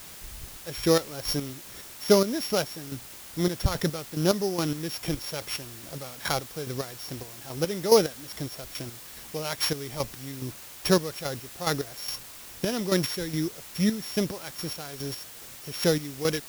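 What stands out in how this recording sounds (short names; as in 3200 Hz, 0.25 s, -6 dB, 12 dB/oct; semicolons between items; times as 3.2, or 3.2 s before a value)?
a buzz of ramps at a fixed pitch in blocks of 8 samples; chopped level 2.4 Hz, depth 65%, duty 35%; a quantiser's noise floor 8-bit, dither triangular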